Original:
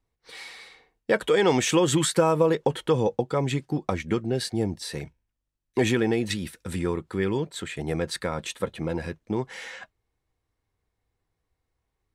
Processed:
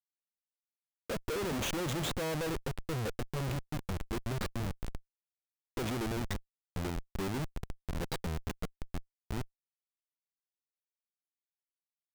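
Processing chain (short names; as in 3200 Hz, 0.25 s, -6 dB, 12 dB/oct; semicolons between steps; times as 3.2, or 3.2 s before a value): dynamic EQ 440 Hz, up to -4 dB, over -40 dBFS, Q 6.3; envelope flanger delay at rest 10.3 ms, full sweep at -21.5 dBFS; Schmitt trigger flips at -28 dBFS; gain -4.5 dB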